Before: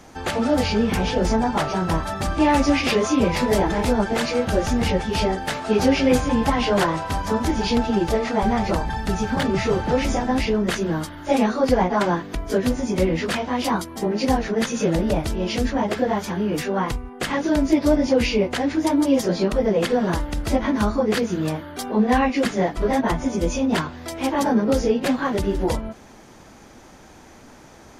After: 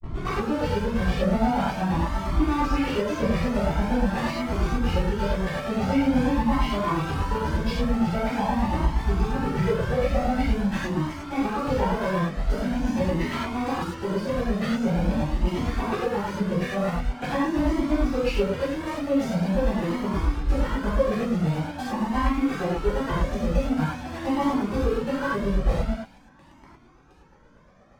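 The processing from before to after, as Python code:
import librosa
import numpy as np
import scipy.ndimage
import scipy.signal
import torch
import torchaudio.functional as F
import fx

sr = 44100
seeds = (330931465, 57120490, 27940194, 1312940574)

p1 = fx.tape_start_head(x, sr, length_s=0.42)
p2 = p1 + fx.echo_wet_highpass(p1, sr, ms=354, feedback_pct=58, hz=1800.0, wet_db=-11, dry=0)
p3 = fx.granulator(p2, sr, seeds[0], grain_ms=98.0, per_s=8.5, spray_ms=10.0, spread_st=0)
p4 = fx.peak_eq(p3, sr, hz=9700.0, db=-9.5, octaves=2.6)
p5 = fx.fuzz(p4, sr, gain_db=48.0, gate_db=-38.0)
p6 = p4 + (p5 * librosa.db_to_amplitude(-11.0))
p7 = fx.high_shelf(p6, sr, hz=4400.0, db=-10.0)
p8 = fx.rev_gated(p7, sr, seeds[1], gate_ms=130, shape='flat', drr_db=-7.5)
p9 = fx.comb_cascade(p8, sr, direction='rising', hz=0.45)
y = p9 * librosa.db_to_amplitude(-6.5)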